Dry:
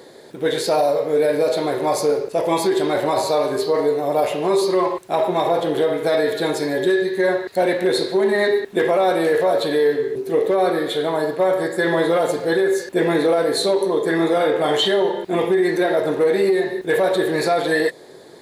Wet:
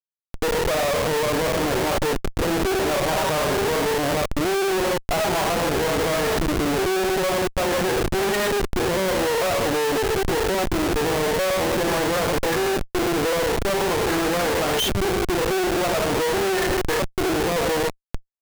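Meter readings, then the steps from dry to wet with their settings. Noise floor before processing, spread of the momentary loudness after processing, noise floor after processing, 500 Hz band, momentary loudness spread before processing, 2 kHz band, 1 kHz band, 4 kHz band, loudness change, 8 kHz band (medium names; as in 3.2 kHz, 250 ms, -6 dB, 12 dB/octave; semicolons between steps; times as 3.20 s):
-42 dBFS, 2 LU, -56 dBFS, -5.0 dB, 4 LU, 0.0 dB, -1.0 dB, +0.5 dB, -3.0 dB, +6.0 dB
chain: peak limiter -18 dBFS, peak gain reduction 8.5 dB; LFO low-pass saw up 0.47 Hz 250–3200 Hz; Chebyshev shaper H 6 -11 dB, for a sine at -10.5 dBFS; Schmitt trigger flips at -27.5 dBFS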